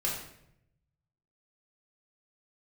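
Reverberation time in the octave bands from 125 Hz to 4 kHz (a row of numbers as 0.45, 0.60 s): 1.5, 0.95, 0.85, 0.70, 0.70, 0.60 s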